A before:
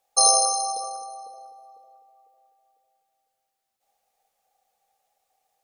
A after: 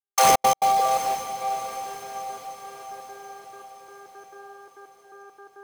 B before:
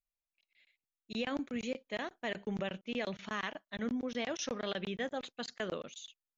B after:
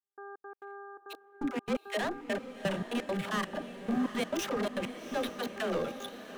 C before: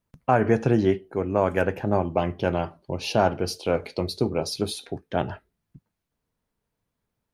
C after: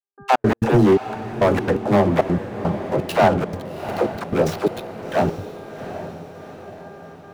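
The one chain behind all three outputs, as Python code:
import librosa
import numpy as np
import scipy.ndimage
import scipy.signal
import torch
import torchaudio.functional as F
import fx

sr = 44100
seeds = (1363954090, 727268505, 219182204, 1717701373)

y = scipy.signal.medfilt(x, 9)
y = scipy.signal.sosfilt(scipy.signal.butter(4, 110.0, 'highpass', fs=sr, output='sos'), y)
y = fx.dynamic_eq(y, sr, hz=2400.0, q=1.2, threshold_db=-41.0, ratio=4.0, max_db=-4)
y = fx.leveller(y, sr, passes=3)
y = fx.dmg_buzz(y, sr, base_hz=400.0, harmonics=4, level_db=-45.0, tilt_db=-3, odd_only=False)
y = fx.dispersion(y, sr, late='lows', ms=85.0, hz=340.0)
y = fx.step_gate(y, sr, bpm=170, pattern='..xx.x.xxxx.x.', floor_db=-60.0, edge_ms=4.5)
y = fx.echo_diffused(y, sr, ms=761, feedback_pct=53, wet_db=-11.0)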